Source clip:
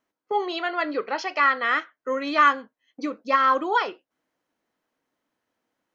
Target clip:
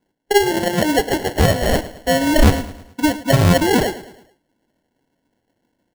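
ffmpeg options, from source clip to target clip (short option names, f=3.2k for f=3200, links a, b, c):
-af "lowshelf=f=430:g=11.5,acrusher=samples=36:mix=1:aa=0.000001,aecho=1:1:108|216|324|432:0.158|0.0729|0.0335|0.0154,volume=5dB"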